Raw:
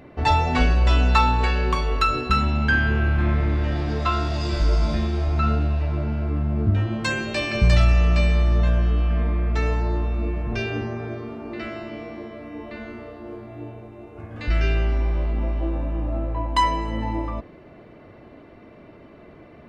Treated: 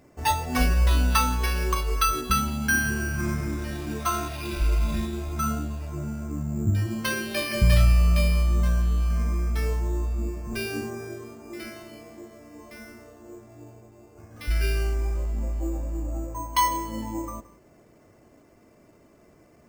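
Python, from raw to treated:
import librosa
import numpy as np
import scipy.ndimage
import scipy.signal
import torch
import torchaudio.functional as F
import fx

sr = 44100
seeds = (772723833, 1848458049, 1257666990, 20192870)

y = fx.noise_reduce_blind(x, sr, reduce_db=8)
y = y + 10.0 ** (-19.5 / 20.0) * np.pad(y, (int(171 * sr / 1000.0), 0))[:len(y)]
y = np.repeat(y[::6], 6)[:len(y)]
y = y * 10.0 ** (-2.0 / 20.0)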